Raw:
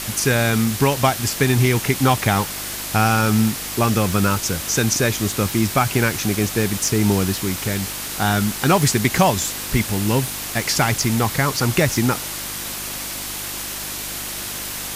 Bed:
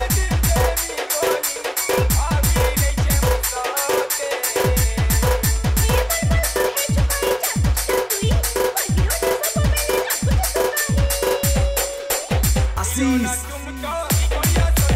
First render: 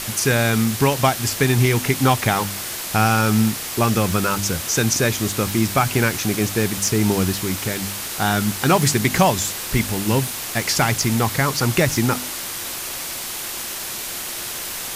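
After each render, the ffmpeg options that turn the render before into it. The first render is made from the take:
-af "bandreject=f=50:t=h:w=4,bandreject=f=100:t=h:w=4,bandreject=f=150:t=h:w=4,bandreject=f=200:t=h:w=4,bandreject=f=250:t=h:w=4,bandreject=f=300:t=h:w=4"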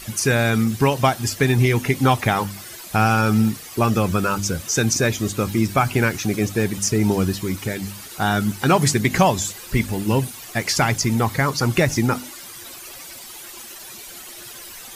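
-af "afftdn=nr=13:nf=-29"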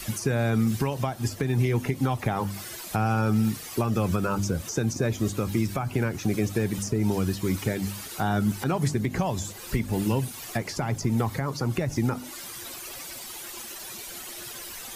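-filter_complex "[0:a]acrossover=split=130|1100[a][b][c];[a]acompressor=threshold=-25dB:ratio=4[d];[b]acompressor=threshold=-21dB:ratio=4[e];[c]acompressor=threshold=-35dB:ratio=4[f];[d][e][f]amix=inputs=3:normalize=0,alimiter=limit=-14.5dB:level=0:latency=1:release=282"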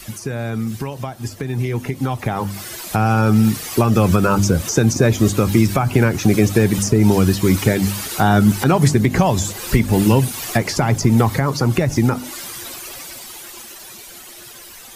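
-af "dynaudnorm=f=270:g=21:m=13dB"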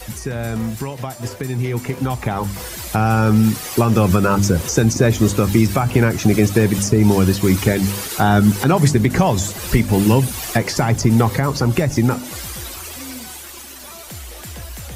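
-filter_complex "[1:a]volume=-17dB[a];[0:a][a]amix=inputs=2:normalize=0"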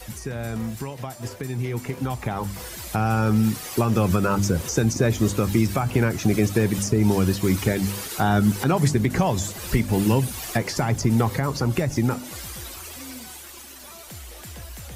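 -af "volume=-6dB"

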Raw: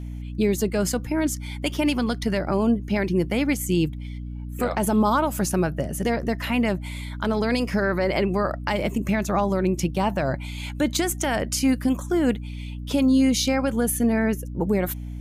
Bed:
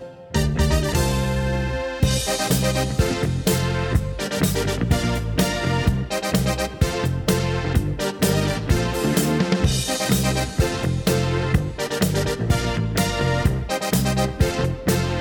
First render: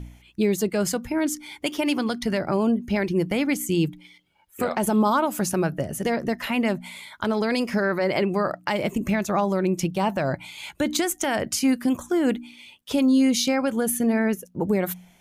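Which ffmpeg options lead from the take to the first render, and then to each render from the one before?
-af "bandreject=f=60:t=h:w=4,bandreject=f=120:t=h:w=4,bandreject=f=180:t=h:w=4,bandreject=f=240:t=h:w=4,bandreject=f=300:t=h:w=4"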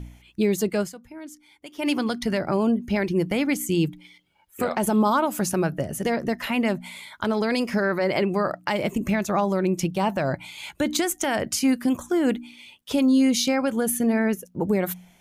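-filter_complex "[0:a]asplit=3[a][b][c];[a]atrim=end=0.93,asetpts=PTS-STARTPTS,afade=t=out:st=0.8:d=0.13:c=qua:silence=0.16788[d];[b]atrim=start=0.93:end=1.72,asetpts=PTS-STARTPTS,volume=-15.5dB[e];[c]atrim=start=1.72,asetpts=PTS-STARTPTS,afade=t=in:d=0.13:c=qua:silence=0.16788[f];[d][e][f]concat=n=3:v=0:a=1"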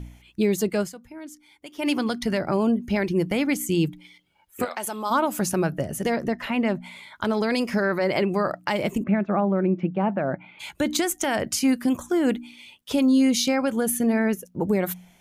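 -filter_complex "[0:a]asplit=3[a][b][c];[a]afade=t=out:st=4.64:d=0.02[d];[b]highpass=f=1.4k:p=1,afade=t=in:st=4.64:d=0.02,afade=t=out:st=5.1:d=0.02[e];[c]afade=t=in:st=5.1:d=0.02[f];[d][e][f]amix=inputs=3:normalize=0,asettb=1/sr,asplit=3[g][h][i];[g]atrim=end=6.284[j];[h]atrim=start=6.28:end=7.16,asetpts=PTS-STARTPTS,afade=t=in:d=0.004:c=qsin,afade=t=out:st=0.876:d=0.004:c=qsin,lowpass=f=2.8k:p=1[k];[i]atrim=start=7.156[l];[j][k]acrossfade=d=0.004:c1=hsin:c2=qsin[m];[m][l]acrossfade=d=0.004:c1=qsin:c2=hsin,asplit=3[n][o][p];[n]afade=t=out:st=9.02:d=0.02[q];[o]highpass=170,equalizer=f=200:t=q:w=4:g=5,equalizer=f=1k:t=q:w=4:g=-5,equalizer=f=1.9k:t=q:w=4:g=-4,lowpass=f=2.1k:w=0.5412,lowpass=f=2.1k:w=1.3066,afade=t=in:st=9.02:d=0.02,afade=t=out:st=10.59:d=0.02[r];[p]afade=t=in:st=10.59:d=0.02[s];[q][r][s]amix=inputs=3:normalize=0"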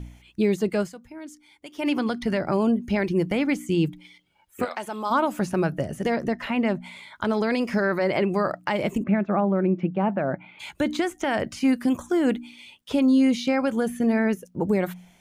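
-filter_complex "[0:a]acrossover=split=3200[a][b];[b]acompressor=threshold=-41dB:ratio=4:attack=1:release=60[c];[a][c]amix=inputs=2:normalize=0,equalizer=f=12k:t=o:w=0.22:g=-8"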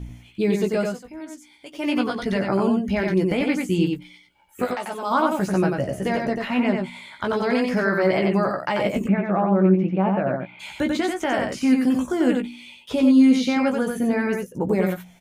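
-filter_complex "[0:a]asplit=2[a][b];[b]adelay=16,volume=-5.5dB[c];[a][c]amix=inputs=2:normalize=0,asplit=2[d][e];[e]aecho=0:1:91:0.631[f];[d][f]amix=inputs=2:normalize=0"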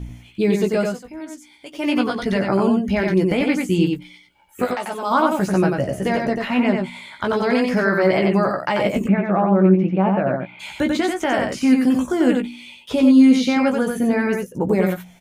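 -af "volume=3dB"

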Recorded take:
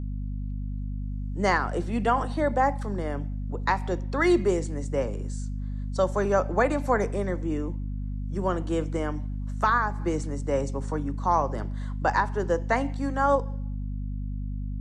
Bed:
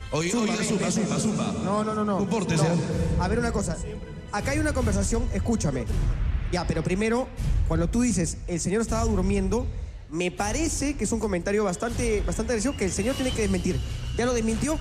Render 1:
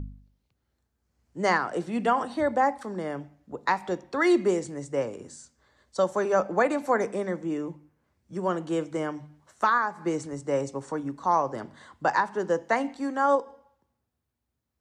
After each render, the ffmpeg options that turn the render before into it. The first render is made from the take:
-af "bandreject=f=50:t=h:w=4,bandreject=f=100:t=h:w=4,bandreject=f=150:t=h:w=4,bandreject=f=200:t=h:w=4,bandreject=f=250:t=h:w=4"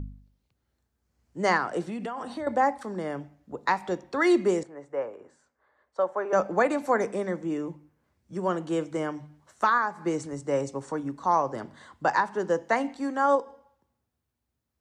-filter_complex "[0:a]asettb=1/sr,asplit=3[a][b][c];[a]atrim=end=1.894[d];[b]atrim=start=1.89:end=2.47,asetpts=PTS-STARTPTS,afade=t=in:d=0.004:c=qsin,afade=t=out:st=0.576:d=0.004:c=qsin,acompressor=threshold=-30dB:ratio=8:attack=3.2:release=140:knee=1:detection=peak[e];[c]atrim=start=2.466[f];[d][e]acrossfade=d=0.004:c1=hsin:c2=qsin[g];[g][f]acrossfade=d=0.004:c1=qsin:c2=hsin,asettb=1/sr,asplit=3[h][i][j];[h]atrim=end=4.634[k];[i]atrim=start=4.63:end=6.33,asetpts=PTS-STARTPTS,afade=t=in:d=0.004:c=qsin,afade=t=out:st=1.696:d=0.004:c=qsin,acrossover=split=410 2100:gain=0.141 1 0.0708[l][m][n];[l][m][n]amix=inputs=3:normalize=0[o];[j]atrim=start=6.326[p];[k][o]acrossfade=d=0.004:c1=hsin:c2=qsin[q];[q][p]acrossfade=d=0.004:c1=qsin:c2=hsin"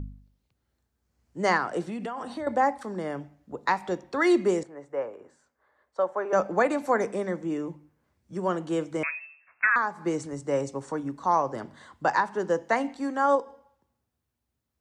-filter_complex "[0:a]asettb=1/sr,asplit=3[a][b][c];[a]atrim=end=9.034[d];[b]atrim=start=9.03:end=9.76,asetpts=PTS-STARTPTS,afade=t=in:d=0.004:c=qsin,afade=t=out:st=0.726:d=0.004:c=qsin,lowpass=f=2.4k:t=q:w=0.5098,lowpass=f=2.4k:t=q:w=0.6013,lowpass=f=2.4k:t=q:w=0.9,lowpass=f=2.4k:t=q:w=2.563,afreqshift=-2800[e];[c]atrim=start=9.756[f];[d][e]acrossfade=d=0.004:c1=hsin:c2=qsin[g];[g][f]acrossfade=d=0.004:c1=qsin:c2=hsin"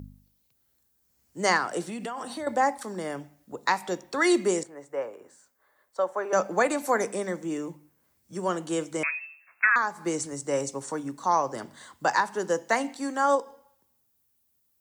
-af "highpass=f=120:p=1,aemphasis=mode=production:type=75fm"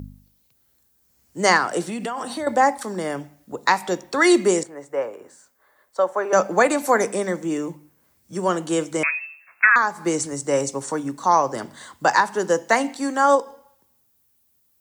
-af "volume=6.5dB"

